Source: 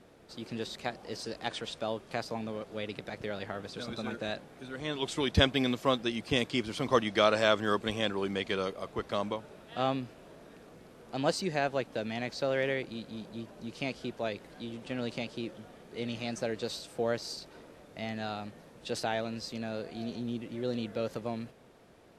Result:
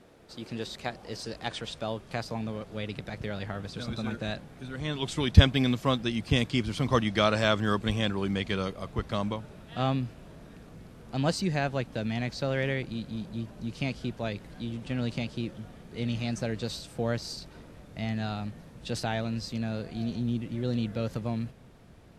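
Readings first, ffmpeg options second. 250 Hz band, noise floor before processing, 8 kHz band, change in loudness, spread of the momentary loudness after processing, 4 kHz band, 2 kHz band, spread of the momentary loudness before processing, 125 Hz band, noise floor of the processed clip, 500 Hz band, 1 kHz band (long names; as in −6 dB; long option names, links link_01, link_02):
+4.5 dB, −55 dBFS, +1.5 dB, +3.0 dB, 13 LU, +1.5 dB, +1.0 dB, 14 LU, +11.0 dB, −51 dBFS, −1.0 dB, +0.5 dB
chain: -af "asubboost=boost=4:cutoff=190,volume=1.5dB"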